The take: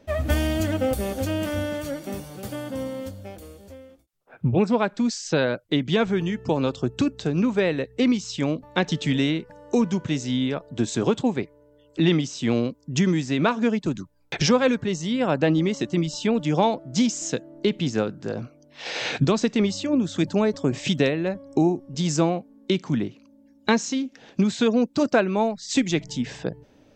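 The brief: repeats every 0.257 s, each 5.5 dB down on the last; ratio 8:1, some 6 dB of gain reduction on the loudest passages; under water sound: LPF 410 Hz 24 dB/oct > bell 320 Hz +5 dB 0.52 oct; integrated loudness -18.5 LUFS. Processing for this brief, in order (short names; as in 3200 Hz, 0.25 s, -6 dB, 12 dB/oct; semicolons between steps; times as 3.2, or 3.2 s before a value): compressor 8:1, threshold -21 dBFS; LPF 410 Hz 24 dB/oct; bell 320 Hz +5 dB 0.52 oct; feedback echo 0.257 s, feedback 53%, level -5.5 dB; gain +8 dB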